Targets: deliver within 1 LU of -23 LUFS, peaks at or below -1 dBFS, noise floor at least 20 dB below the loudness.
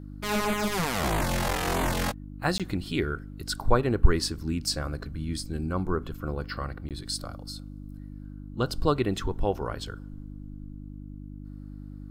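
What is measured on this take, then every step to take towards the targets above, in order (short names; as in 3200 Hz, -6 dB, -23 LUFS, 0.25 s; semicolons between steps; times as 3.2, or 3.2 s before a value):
dropouts 2; longest dropout 17 ms; hum 50 Hz; harmonics up to 300 Hz; hum level -38 dBFS; loudness -29.5 LUFS; peak -5.0 dBFS; loudness target -23.0 LUFS
-> interpolate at 2.58/6.89, 17 ms; de-hum 50 Hz, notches 6; gain +6.5 dB; limiter -1 dBFS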